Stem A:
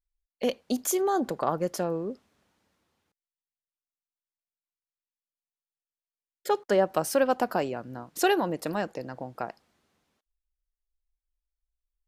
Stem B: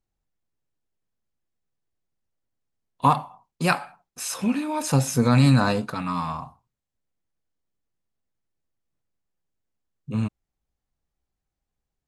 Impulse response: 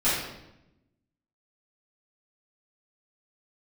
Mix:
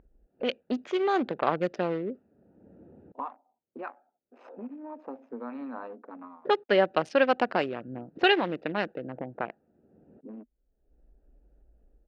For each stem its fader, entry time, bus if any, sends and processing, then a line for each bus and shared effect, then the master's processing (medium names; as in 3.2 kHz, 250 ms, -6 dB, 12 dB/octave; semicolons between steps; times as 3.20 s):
-4.5 dB, 0.00 s, no send, local Wiener filter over 41 samples; frequency weighting D; level rider gain up to 7 dB
-15.0 dB, 0.15 s, no send, local Wiener filter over 41 samples; Chebyshev high-pass 240 Hz, order 5; bass shelf 490 Hz -11.5 dB; auto duck -20 dB, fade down 0.25 s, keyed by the first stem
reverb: none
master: low-pass 2.8 kHz 12 dB/octave; level-controlled noise filter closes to 610 Hz, open at -22 dBFS; upward compressor, threshold -29 dBFS